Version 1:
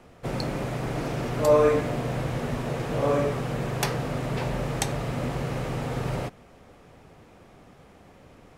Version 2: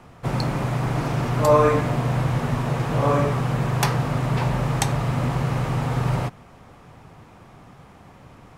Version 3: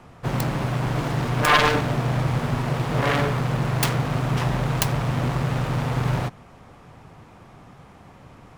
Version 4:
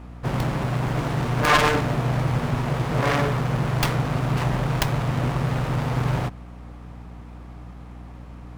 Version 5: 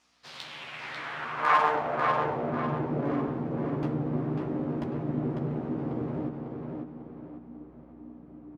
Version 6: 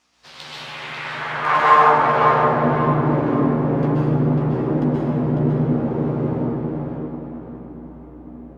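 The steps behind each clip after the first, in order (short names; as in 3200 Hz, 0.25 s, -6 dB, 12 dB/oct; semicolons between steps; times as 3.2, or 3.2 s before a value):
ten-band EQ 125 Hz +6 dB, 500 Hz -4 dB, 1000 Hz +6 dB; gain +3 dB
self-modulated delay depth 0.96 ms
hum 60 Hz, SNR 16 dB; running maximum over 5 samples
doubler 13 ms -4 dB; band-pass sweep 5800 Hz -> 300 Hz, 0.03–2.66; tape echo 0.546 s, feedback 41%, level -3.5 dB, low-pass 5100 Hz
plate-style reverb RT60 2 s, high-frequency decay 0.6×, pre-delay 0.115 s, DRR -6 dB; gain +3 dB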